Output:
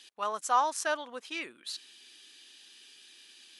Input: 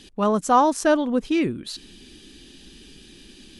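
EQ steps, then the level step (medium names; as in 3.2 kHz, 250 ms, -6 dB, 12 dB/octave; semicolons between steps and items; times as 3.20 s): high-pass 1 kHz 12 dB/octave; -4.5 dB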